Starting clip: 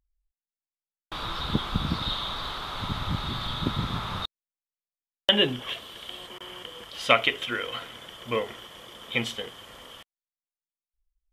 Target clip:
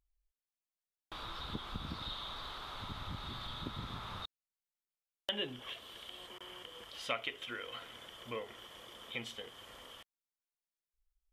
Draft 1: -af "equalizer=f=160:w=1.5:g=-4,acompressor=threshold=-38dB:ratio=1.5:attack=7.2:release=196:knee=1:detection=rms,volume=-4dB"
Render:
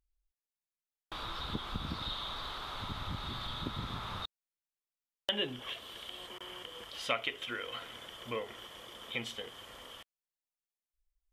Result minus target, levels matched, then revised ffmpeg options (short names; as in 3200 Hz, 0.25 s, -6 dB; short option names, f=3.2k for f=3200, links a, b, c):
compressor: peak gain reduction -4 dB
-af "equalizer=f=160:w=1.5:g=-4,acompressor=threshold=-49.5dB:ratio=1.5:attack=7.2:release=196:knee=1:detection=rms,volume=-4dB"